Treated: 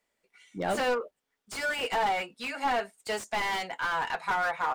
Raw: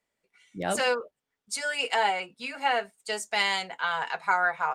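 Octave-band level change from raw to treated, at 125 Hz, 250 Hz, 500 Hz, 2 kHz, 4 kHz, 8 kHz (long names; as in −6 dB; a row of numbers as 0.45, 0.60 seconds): can't be measured, +1.5 dB, −0.5 dB, −3.0 dB, −5.5 dB, −6.5 dB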